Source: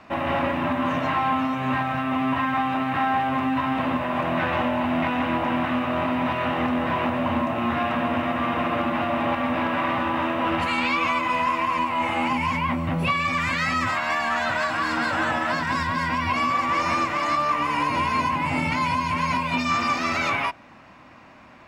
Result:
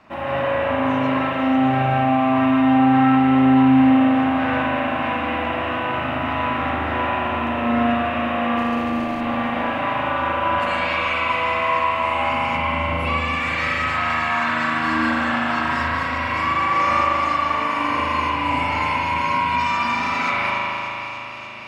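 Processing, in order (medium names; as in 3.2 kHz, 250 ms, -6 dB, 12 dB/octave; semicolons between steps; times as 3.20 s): 8.57–9.21 s: median filter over 41 samples; feedback echo behind a high-pass 294 ms, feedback 82%, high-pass 2.3 kHz, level -11 dB; spring tank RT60 3.6 s, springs 38 ms, chirp 65 ms, DRR -7 dB; trim -4.5 dB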